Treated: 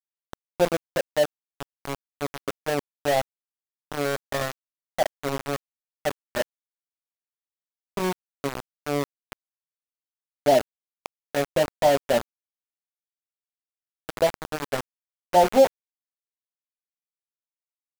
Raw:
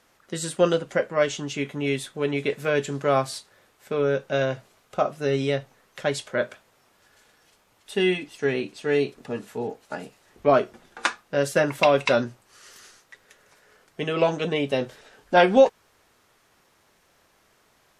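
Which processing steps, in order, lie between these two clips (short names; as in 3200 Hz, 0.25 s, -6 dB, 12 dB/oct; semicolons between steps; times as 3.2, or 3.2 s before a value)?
rippled Chebyshev low-pass 920 Hz, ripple 3 dB; tilt shelf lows -4 dB, about 660 Hz; sample gate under -23 dBFS; gain +2 dB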